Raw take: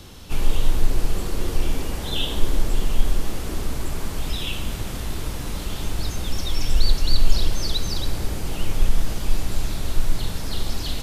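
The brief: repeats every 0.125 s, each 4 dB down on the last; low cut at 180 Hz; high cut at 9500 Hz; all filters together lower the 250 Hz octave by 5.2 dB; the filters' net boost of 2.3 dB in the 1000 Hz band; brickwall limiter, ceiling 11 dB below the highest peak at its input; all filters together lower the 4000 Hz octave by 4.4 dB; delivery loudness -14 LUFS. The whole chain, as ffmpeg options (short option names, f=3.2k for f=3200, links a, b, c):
-af "highpass=180,lowpass=9.5k,equalizer=f=250:t=o:g=-5.5,equalizer=f=1k:t=o:g=3.5,equalizer=f=4k:t=o:g=-5.5,alimiter=level_in=6dB:limit=-24dB:level=0:latency=1,volume=-6dB,aecho=1:1:125|250|375|500|625|750|875|1000|1125:0.631|0.398|0.25|0.158|0.0994|0.0626|0.0394|0.0249|0.0157,volume=22dB"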